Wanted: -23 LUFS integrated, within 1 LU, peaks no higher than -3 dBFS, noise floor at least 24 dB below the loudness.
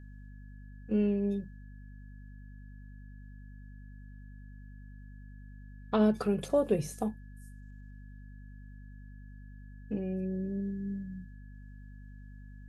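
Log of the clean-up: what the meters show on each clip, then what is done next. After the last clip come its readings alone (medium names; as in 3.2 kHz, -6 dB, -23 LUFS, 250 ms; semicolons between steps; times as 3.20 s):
hum 50 Hz; highest harmonic 250 Hz; hum level -46 dBFS; steady tone 1.7 kHz; tone level -63 dBFS; loudness -32.0 LUFS; peak level -15.5 dBFS; loudness target -23.0 LUFS
-> hum notches 50/100/150/200/250 Hz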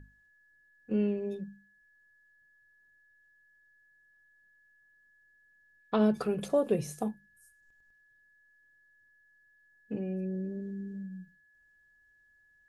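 hum not found; steady tone 1.7 kHz; tone level -63 dBFS
-> band-stop 1.7 kHz, Q 30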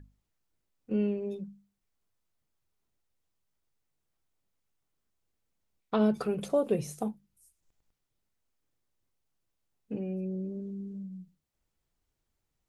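steady tone not found; loudness -32.5 LUFS; peak level -16.0 dBFS; loudness target -23.0 LUFS
-> trim +9.5 dB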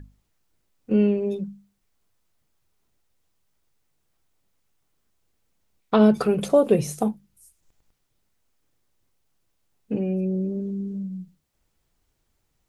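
loudness -23.0 LUFS; peak level -6.5 dBFS; noise floor -73 dBFS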